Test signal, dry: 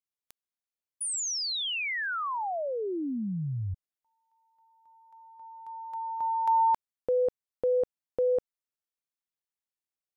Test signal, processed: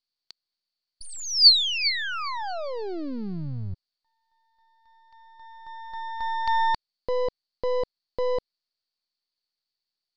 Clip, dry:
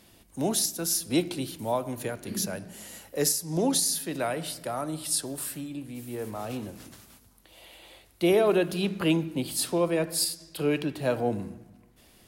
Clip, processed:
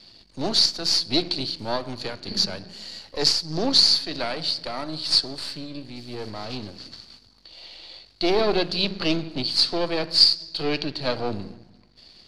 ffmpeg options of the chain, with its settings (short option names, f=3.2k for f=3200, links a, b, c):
-af "aeval=exprs='if(lt(val(0),0),0.251*val(0),val(0))':c=same,lowpass=f=4.5k:t=q:w=14,volume=3.5dB"